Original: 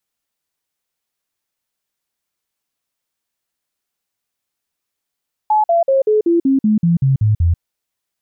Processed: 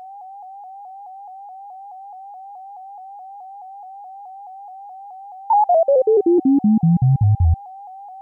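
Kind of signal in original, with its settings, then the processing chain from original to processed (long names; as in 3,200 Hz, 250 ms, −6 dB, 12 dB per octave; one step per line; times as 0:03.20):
stepped sweep 855 Hz down, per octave 3, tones 11, 0.14 s, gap 0.05 s −10 dBFS
steady tone 780 Hz −34 dBFS
pitch modulation by a square or saw wave saw up 4.7 Hz, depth 100 cents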